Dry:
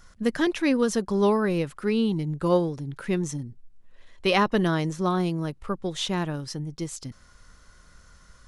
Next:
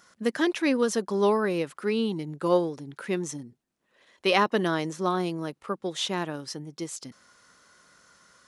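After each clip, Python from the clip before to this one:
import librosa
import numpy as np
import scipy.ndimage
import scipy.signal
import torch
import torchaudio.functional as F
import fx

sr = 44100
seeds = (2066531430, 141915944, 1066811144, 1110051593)

y = scipy.signal.sosfilt(scipy.signal.butter(2, 250.0, 'highpass', fs=sr, output='sos'), x)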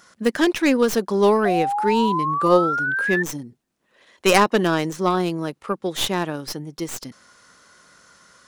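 y = fx.tracing_dist(x, sr, depth_ms=0.14)
y = fx.spec_paint(y, sr, seeds[0], shape='rise', start_s=1.45, length_s=1.78, low_hz=700.0, high_hz=1800.0, level_db=-29.0)
y = y * librosa.db_to_amplitude(6.0)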